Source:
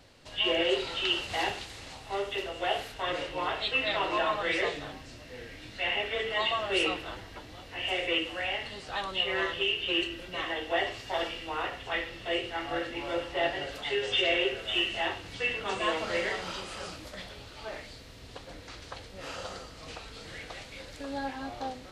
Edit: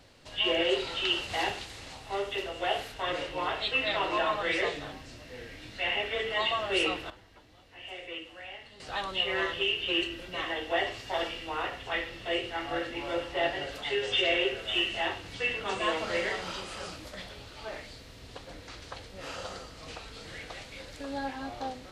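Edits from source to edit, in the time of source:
7.10–8.80 s: gain -11.5 dB

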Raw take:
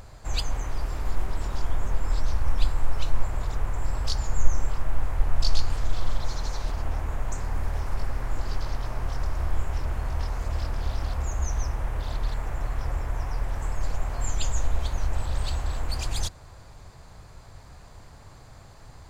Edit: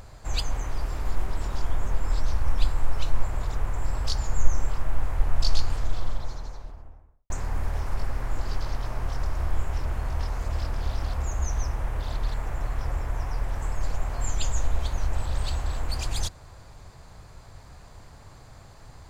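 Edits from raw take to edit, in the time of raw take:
5.55–7.30 s: studio fade out

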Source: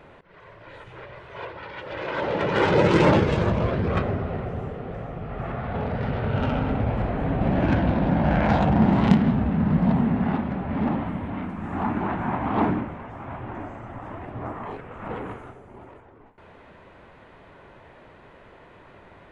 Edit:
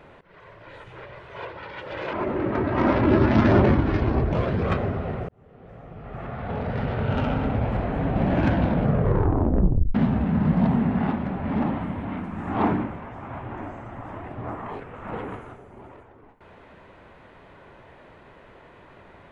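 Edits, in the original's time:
2.13–3.58 s: speed 66%
4.54–6.03 s: fade in
7.91 s: tape stop 1.29 s
11.80–12.52 s: delete

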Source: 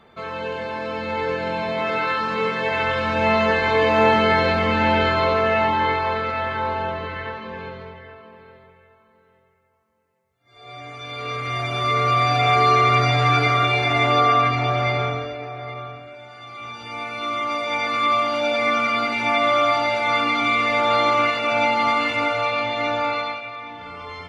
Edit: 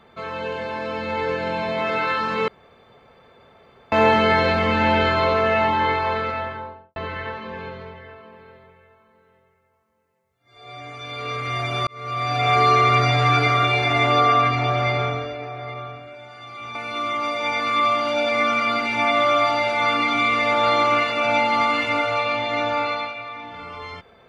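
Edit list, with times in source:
2.48–3.92 s: room tone
6.20–6.96 s: studio fade out
11.87–12.58 s: fade in
16.75–17.02 s: delete

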